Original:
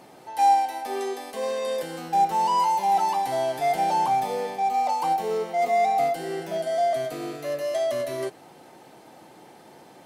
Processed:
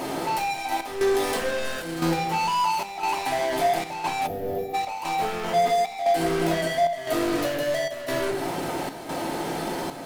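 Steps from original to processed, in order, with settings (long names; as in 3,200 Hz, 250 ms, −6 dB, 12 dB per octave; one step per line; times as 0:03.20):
downward compressor, threshold −34 dBFS, peak gain reduction 17.5 dB
leveller curve on the samples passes 5
convolution reverb RT60 0.95 s, pre-delay 3 ms, DRR 0.5 dB
gain on a spectral selection 0:04.27–0:04.74, 770–11,000 Hz −19 dB
square-wave tremolo 0.99 Hz, depth 60%, duty 80%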